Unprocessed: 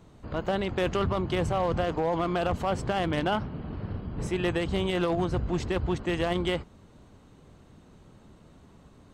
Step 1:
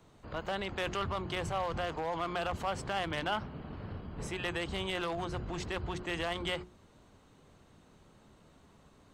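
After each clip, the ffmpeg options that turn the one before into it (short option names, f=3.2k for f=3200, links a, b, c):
-filter_complex "[0:a]lowshelf=f=490:g=-6,bandreject=f=60:t=h:w=6,bandreject=f=120:t=h:w=6,bandreject=f=180:t=h:w=6,bandreject=f=240:t=h:w=6,bandreject=f=300:t=h:w=6,bandreject=f=360:t=h:w=6,acrossover=split=120|740|3000[a][b][c][d];[b]alimiter=level_in=7.5dB:limit=-24dB:level=0:latency=1,volume=-7.5dB[e];[a][e][c][d]amix=inputs=4:normalize=0,volume=-2dB"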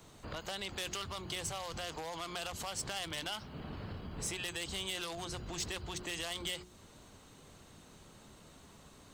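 -filter_complex "[0:a]highshelf=f=3.4k:g=11,acrossover=split=3500[a][b];[a]acompressor=threshold=-42dB:ratio=6[c];[c][b]amix=inputs=2:normalize=0,asoftclip=type=tanh:threshold=-31.5dB,volume=2.5dB"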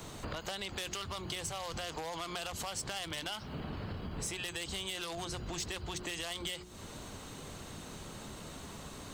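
-af "acompressor=threshold=-51dB:ratio=3,volume=11dB"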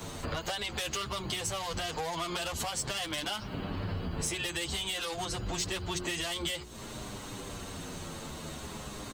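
-filter_complex "[0:a]asplit=2[a][b];[b]adelay=8.4,afreqshift=-0.51[c];[a][c]amix=inputs=2:normalize=1,volume=8dB"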